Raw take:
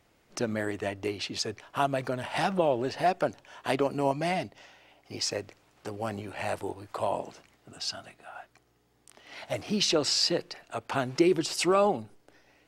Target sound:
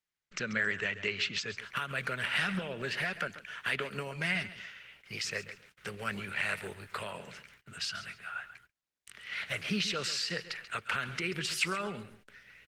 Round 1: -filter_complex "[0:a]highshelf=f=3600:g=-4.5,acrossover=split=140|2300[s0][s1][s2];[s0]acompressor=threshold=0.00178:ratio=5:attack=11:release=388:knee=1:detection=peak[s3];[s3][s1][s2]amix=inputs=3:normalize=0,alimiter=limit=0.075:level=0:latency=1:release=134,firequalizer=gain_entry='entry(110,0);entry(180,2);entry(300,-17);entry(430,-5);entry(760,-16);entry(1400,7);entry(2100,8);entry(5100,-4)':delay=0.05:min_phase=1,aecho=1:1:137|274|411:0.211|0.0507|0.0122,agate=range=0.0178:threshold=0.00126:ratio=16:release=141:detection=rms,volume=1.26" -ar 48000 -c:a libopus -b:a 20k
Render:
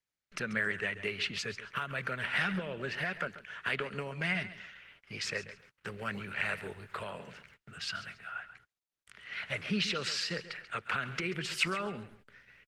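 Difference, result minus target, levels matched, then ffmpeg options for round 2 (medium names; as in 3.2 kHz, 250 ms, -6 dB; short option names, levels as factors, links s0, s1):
8 kHz band -3.0 dB
-filter_complex "[0:a]highshelf=f=3600:g=5,acrossover=split=140|2300[s0][s1][s2];[s0]acompressor=threshold=0.00178:ratio=5:attack=11:release=388:knee=1:detection=peak[s3];[s3][s1][s2]amix=inputs=3:normalize=0,alimiter=limit=0.075:level=0:latency=1:release=134,firequalizer=gain_entry='entry(110,0);entry(180,2);entry(300,-17);entry(430,-5);entry(760,-16);entry(1400,7);entry(2100,8);entry(5100,-4)':delay=0.05:min_phase=1,aecho=1:1:137|274|411:0.211|0.0507|0.0122,agate=range=0.0178:threshold=0.00126:ratio=16:release=141:detection=rms,volume=1.26" -ar 48000 -c:a libopus -b:a 20k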